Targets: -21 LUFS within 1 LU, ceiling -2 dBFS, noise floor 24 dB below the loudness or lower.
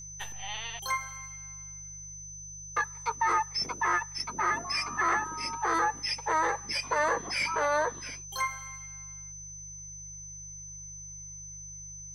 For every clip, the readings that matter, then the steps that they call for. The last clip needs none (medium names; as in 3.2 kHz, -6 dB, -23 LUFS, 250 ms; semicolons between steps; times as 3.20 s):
hum 50 Hz; highest harmonic 150 Hz; hum level -49 dBFS; steady tone 6.1 kHz; tone level -42 dBFS; loudness -32.0 LUFS; peak level -16.5 dBFS; loudness target -21.0 LUFS
-> de-hum 50 Hz, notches 3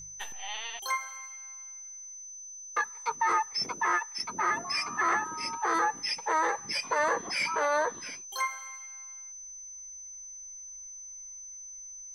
hum not found; steady tone 6.1 kHz; tone level -42 dBFS
-> band-stop 6.1 kHz, Q 30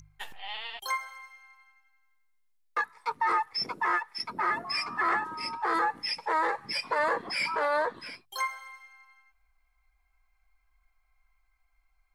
steady tone not found; loudness -30.0 LUFS; peak level -16.5 dBFS; loudness target -21.0 LUFS
-> trim +9 dB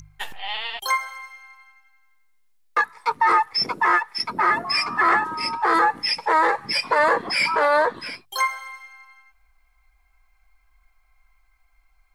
loudness -21.0 LUFS; peak level -7.5 dBFS; noise floor -63 dBFS